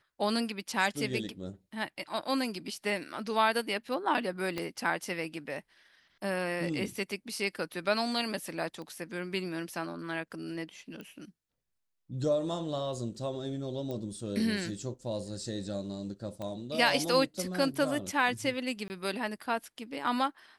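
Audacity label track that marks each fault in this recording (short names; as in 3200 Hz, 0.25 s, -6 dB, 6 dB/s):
4.580000	4.580000	pop -20 dBFS
8.820000	8.820000	pop -32 dBFS
11.010000	11.010000	pop -31 dBFS
13.910000	13.910000	pop -26 dBFS
16.420000	16.420000	pop -26 dBFS
18.880000	18.900000	gap 19 ms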